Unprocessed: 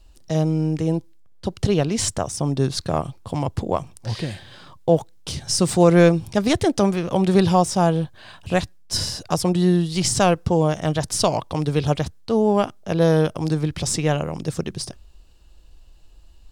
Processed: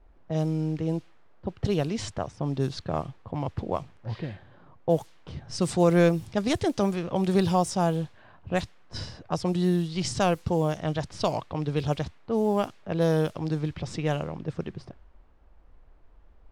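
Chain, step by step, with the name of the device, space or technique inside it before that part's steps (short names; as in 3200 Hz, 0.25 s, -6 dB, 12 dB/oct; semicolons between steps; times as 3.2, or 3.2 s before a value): cassette deck with a dynamic noise filter (white noise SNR 28 dB; low-pass opened by the level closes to 830 Hz, open at -13.5 dBFS); gain -6.5 dB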